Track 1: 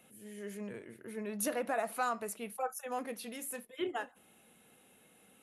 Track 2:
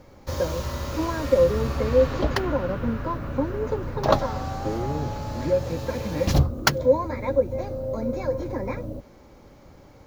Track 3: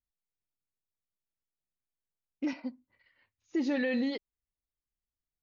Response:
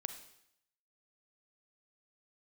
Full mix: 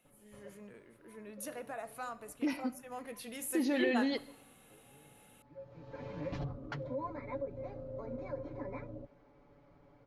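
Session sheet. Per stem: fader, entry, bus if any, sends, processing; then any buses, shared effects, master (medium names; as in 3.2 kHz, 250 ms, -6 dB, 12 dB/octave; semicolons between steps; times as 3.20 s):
2.81 s -12 dB -> 3.45 s -1.5 dB, 0.00 s, no bus, send -5 dB, none
-14.5 dB, 0.05 s, bus A, no send, low-pass 2.5 kHz 12 dB/octave; comb 7 ms, depth 90%; auto duck -23 dB, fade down 0.65 s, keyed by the first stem
-0.5 dB, 0.00 s, bus A, send -5.5 dB, none
bus A: 0.0 dB, peak limiter -29.5 dBFS, peak gain reduction 10.5 dB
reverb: on, RT60 0.75 s, pre-delay 33 ms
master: bass shelf 190 Hz -3 dB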